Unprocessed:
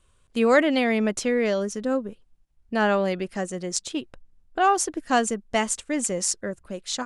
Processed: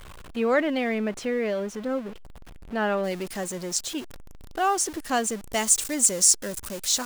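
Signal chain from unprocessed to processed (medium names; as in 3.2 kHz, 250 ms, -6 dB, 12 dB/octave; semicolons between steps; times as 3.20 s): jump at every zero crossing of -30.5 dBFS; tone controls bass -2 dB, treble -9 dB, from 3.03 s treble +4 dB, from 5.41 s treble +12 dB; trim -4.5 dB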